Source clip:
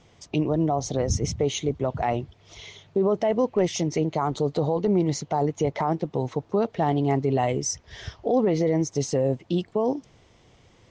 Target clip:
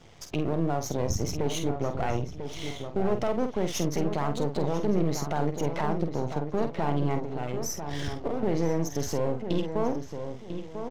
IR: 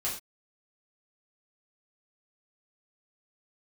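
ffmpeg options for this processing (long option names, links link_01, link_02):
-filter_complex "[0:a]aeval=exprs='if(lt(val(0),0),0.251*val(0),val(0))':channel_layout=same,asettb=1/sr,asplit=3[link_01][link_02][link_03];[link_01]atrim=end=7.184[link_04];[link_02]atrim=start=7.18:end=8.43,asetpts=PTS-STARTPTS,afade=type=in:duration=0.004:curve=qsin,afade=type=out:start_time=1.246:duration=0.004:curve=qsin,acompressor=threshold=-33dB:ratio=16[link_05];[link_03]atrim=start=8.426[link_06];[link_04][link_05]acrossfade=duration=0.004:curve1=hsin:curve2=qsin[link_07];[link_07][link_06]acrossfade=duration=0.004:curve1=qsin:curve2=hsin,alimiter=limit=-22.5dB:level=0:latency=1:release=277,asplit=2[link_08][link_09];[link_09]adelay=48,volume=-8dB[link_10];[link_08][link_10]amix=inputs=2:normalize=0,asplit=2[link_11][link_12];[link_12]adelay=995,lowpass=frequency=2200:poles=1,volume=-8dB,asplit=2[link_13][link_14];[link_14]adelay=995,lowpass=frequency=2200:poles=1,volume=0.31,asplit=2[link_15][link_16];[link_16]adelay=995,lowpass=frequency=2200:poles=1,volume=0.31,asplit=2[link_17][link_18];[link_18]adelay=995,lowpass=frequency=2200:poles=1,volume=0.31[link_19];[link_11][link_13][link_15][link_17][link_19]amix=inputs=5:normalize=0,volume=5.5dB"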